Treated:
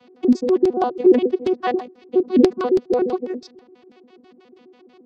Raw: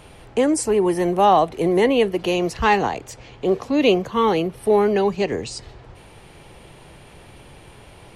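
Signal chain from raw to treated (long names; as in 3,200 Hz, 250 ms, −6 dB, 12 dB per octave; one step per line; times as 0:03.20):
vocoder with an arpeggio as carrier bare fifth, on B3, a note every 112 ms
auto-filter low-pass square 3.8 Hz 330–4,800 Hz
phase-vocoder stretch with locked phases 0.62×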